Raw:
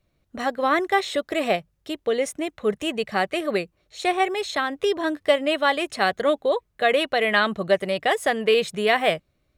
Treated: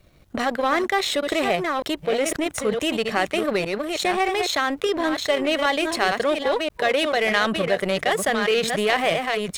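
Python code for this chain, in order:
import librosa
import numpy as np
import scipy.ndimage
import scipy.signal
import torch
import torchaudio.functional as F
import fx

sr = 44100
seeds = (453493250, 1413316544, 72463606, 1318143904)

y = fx.reverse_delay(x, sr, ms=608, wet_db=-9.0)
y = fx.power_curve(y, sr, exponent=1.4)
y = fx.env_flatten(y, sr, amount_pct=70)
y = F.gain(torch.from_numpy(y), -1.5).numpy()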